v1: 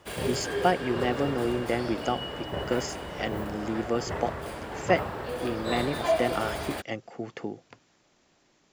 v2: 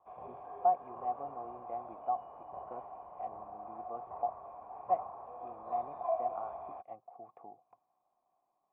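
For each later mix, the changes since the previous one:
master: add cascade formant filter a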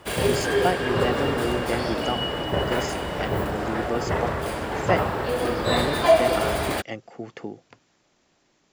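background +8.5 dB; master: remove cascade formant filter a

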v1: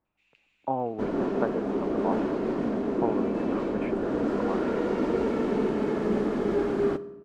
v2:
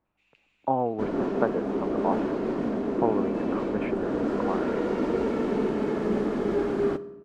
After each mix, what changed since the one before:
speech +3.5 dB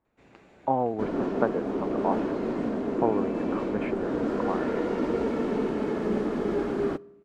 first sound: remove ladder high-pass 2.4 kHz, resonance 65%; second sound: send -9.5 dB

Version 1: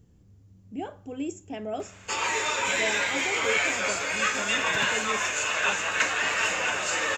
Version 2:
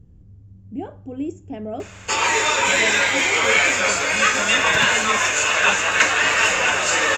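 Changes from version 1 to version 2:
speech: add tilt EQ -3 dB/octave; background +8.5 dB

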